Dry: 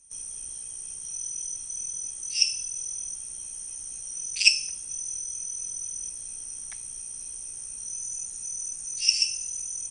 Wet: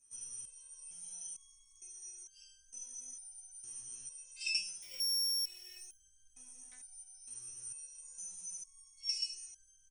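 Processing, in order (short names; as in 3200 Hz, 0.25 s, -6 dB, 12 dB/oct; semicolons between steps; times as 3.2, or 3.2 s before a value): 4.82–5.78 sample sorter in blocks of 8 samples; early reflections 16 ms -5 dB, 77 ms -12 dB; stepped resonator 2.2 Hz 120–1600 Hz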